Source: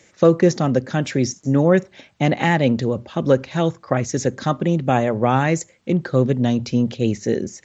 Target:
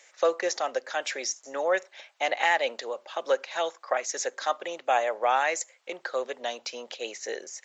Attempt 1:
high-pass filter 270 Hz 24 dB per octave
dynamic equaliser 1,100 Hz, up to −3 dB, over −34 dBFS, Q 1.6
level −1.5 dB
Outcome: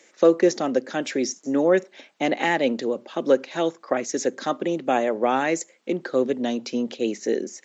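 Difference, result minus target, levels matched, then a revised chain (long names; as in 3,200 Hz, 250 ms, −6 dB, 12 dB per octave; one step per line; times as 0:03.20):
250 Hz band +16.5 dB
high-pass filter 610 Hz 24 dB per octave
dynamic equaliser 1,100 Hz, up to −3 dB, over −34 dBFS, Q 1.6
level −1.5 dB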